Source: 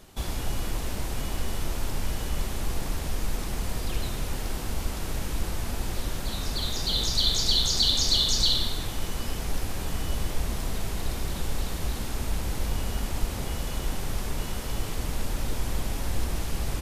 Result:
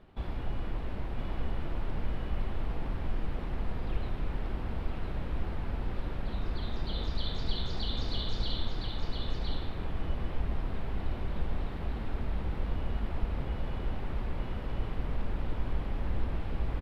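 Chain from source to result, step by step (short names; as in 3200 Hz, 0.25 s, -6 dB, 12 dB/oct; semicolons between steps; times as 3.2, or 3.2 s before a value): air absorption 450 m; echo 1.013 s -5.5 dB; gain -4 dB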